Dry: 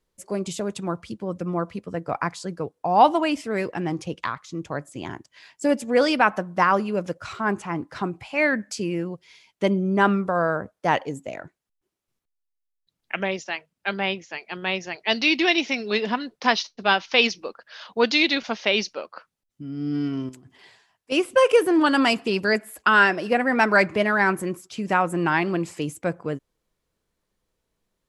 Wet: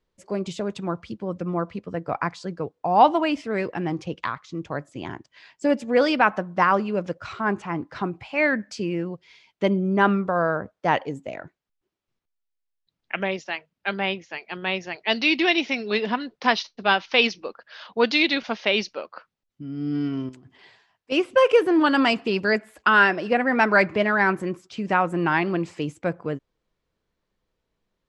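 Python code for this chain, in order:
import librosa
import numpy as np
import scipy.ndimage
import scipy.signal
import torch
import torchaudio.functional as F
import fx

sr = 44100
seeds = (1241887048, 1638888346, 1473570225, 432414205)

y = scipy.signal.sosfilt(scipy.signal.butter(2, 4700.0, 'lowpass', fs=sr, output='sos'), x)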